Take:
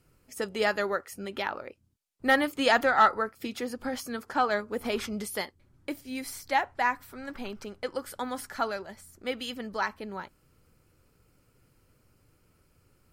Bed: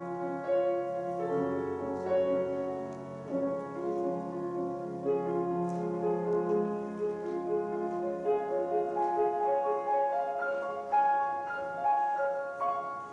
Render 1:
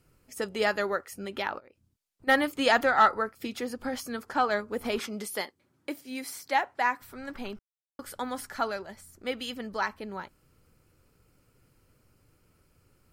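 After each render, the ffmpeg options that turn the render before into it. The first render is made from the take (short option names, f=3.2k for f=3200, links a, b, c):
-filter_complex "[0:a]asplit=3[a][b][c];[a]afade=t=out:st=1.58:d=0.02[d];[b]acompressor=threshold=-51dB:ratio=8:attack=3.2:release=140:knee=1:detection=peak,afade=t=in:st=1.58:d=0.02,afade=t=out:st=2.27:d=0.02[e];[c]afade=t=in:st=2.27:d=0.02[f];[d][e][f]amix=inputs=3:normalize=0,asettb=1/sr,asplit=3[g][h][i];[g]atrim=end=4.994[j];[h]atrim=start=4.99:end=7.02,asetpts=PTS-STARTPTS,afade=t=in:d=0.004:c=qsin,afade=t=out:st=2.026:d=0.004:c=qsin,highpass=210[k];[i]atrim=start=7.016[l];[j][k]acrossfade=d=0.004:c1=hsin:c2=qsin[m];[m][l]acrossfade=d=0.004:c1=qsin:c2=hsin,asplit=3[n][o][p];[n]atrim=end=7.59,asetpts=PTS-STARTPTS,afade=t=out:st=7.586:d=0.004:c=hsin[q];[o]atrim=start=7.59:end=7.99,asetpts=PTS-STARTPTS,volume=0[r];[p]atrim=start=7.99,asetpts=PTS-STARTPTS,afade=t=in:d=0.004:c=hsin[s];[q][r][s]concat=n=3:v=0:a=1"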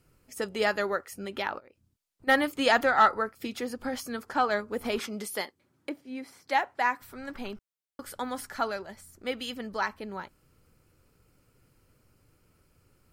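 -filter_complex "[0:a]asettb=1/sr,asplit=3[a][b][c];[a]atrim=end=5.894[d];[b]atrim=start=5.89:end=6.48,asetpts=PTS-STARTPTS,afade=t=in:d=0.004:c=qsin,afade=t=out:st=0.586:d=0.004:c=qsin,lowpass=f=1.2k:p=1[e];[c]atrim=start=6.476[f];[d][e]acrossfade=d=0.004:c1=hsin:c2=qsin[g];[g][f]acrossfade=d=0.004:c1=qsin:c2=hsin"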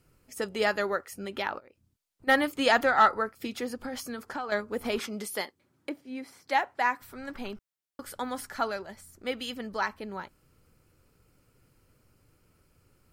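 -filter_complex "[0:a]asettb=1/sr,asplit=3[a][b][c];[a]atrim=end=3.834[d];[b]atrim=start=3.83:end=4.52,asetpts=PTS-STARTPTS,afade=t=in:d=0.004:c=qsin,afade=t=out:st=0.686:d=0.004:c=qsin,acompressor=threshold=-31dB:ratio=5:attack=3.2:release=140:knee=1:detection=peak[e];[c]atrim=start=4.516[f];[d][e]acrossfade=d=0.004:c1=hsin:c2=qsin[g];[g][f]acrossfade=d=0.004:c1=qsin:c2=hsin"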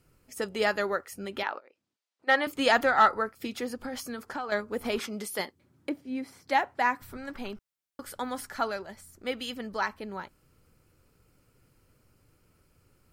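-filter_complex "[0:a]asettb=1/sr,asplit=3[a][b][c];[a]atrim=end=1.434[d];[b]atrim=start=1.43:end=2.47,asetpts=PTS-STARTPTS,afade=t=in:d=0.004:c=qsin,afade=t=out:st=1.036:d=0.004:c=qsin,highpass=410,lowpass=5.8k[e];[c]atrim=start=2.466[f];[d][e]acrossfade=d=0.004:c1=hsin:c2=qsin[g];[g][f]acrossfade=d=0.004:c1=qsin:c2=hsin,asettb=1/sr,asplit=3[h][i][j];[h]atrim=end=5.394[k];[i]atrim=start=5.39:end=7.17,asetpts=PTS-STARTPTS,afade=t=in:d=0.004:c=qsin,afade=t=out:st=1.776:d=0.004:c=qsin,lowshelf=f=250:g=10[l];[j]atrim=start=7.166[m];[k][l]acrossfade=d=0.004:c1=hsin:c2=qsin[n];[n][m]acrossfade=d=0.004:c1=qsin:c2=hsin"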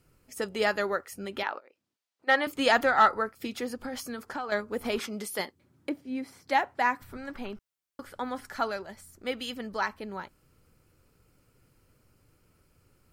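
-filter_complex "[0:a]asettb=1/sr,asplit=3[a][b][c];[a]atrim=end=7.034[d];[b]atrim=start=7.03:end=8.45,asetpts=PTS-STARTPTS,afade=t=in:d=0.004:c=qsin,afade=t=out:st=1.416:d=0.004:c=qsin,acrossover=split=3200[e][f];[f]acompressor=threshold=-55dB:ratio=4:attack=1:release=60[g];[e][g]amix=inputs=2:normalize=0[h];[c]atrim=start=8.446[i];[d][h]acrossfade=d=0.004:c1=hsin:c2=qsin[j];[j][i]acrossfade=d=0.004:c1=qsin:c2=hsin"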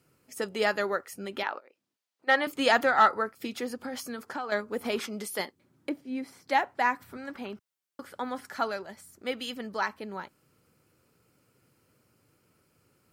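-af "highpass=130"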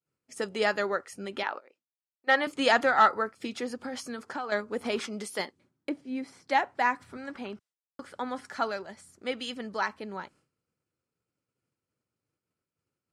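-af "lowpass=f=9.6k:w=0.5412,lowpass=f=9.6k:w=1.3066,agate=range=-33dB:threshold=-55dB:ratio=3:detection=peak"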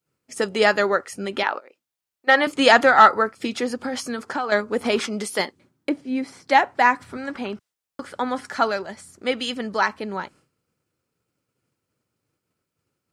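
-af "volume=9dB,alimiter=limit=-2dB:level=0:latency=1"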